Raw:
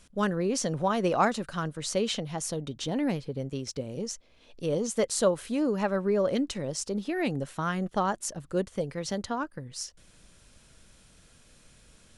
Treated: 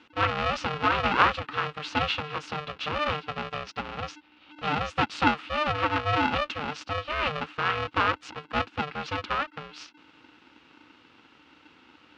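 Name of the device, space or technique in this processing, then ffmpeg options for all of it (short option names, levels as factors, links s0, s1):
ring modulator pedal into a guitar cabinet: -af "aeval=exprs='val(0)*sgn(sin(2*PI*300*n/s))':c=same,highpass=80,equalizer=f=120:t=q:w=4:g=-6,equalizer=f=180:t=q:w=4:g=-5,equalizer=f=390:t=q:w=4:g=-6,equalizer=f=640:t=q:w=4:g=-5,equalizer=f=1300:t=q:w=4:g=9,equalizer=f=2700:t=q:w=4:g=8,lowpass=f=4100:w=0.5412,lowpass=f=4100:w=1.3066,volume=1.12"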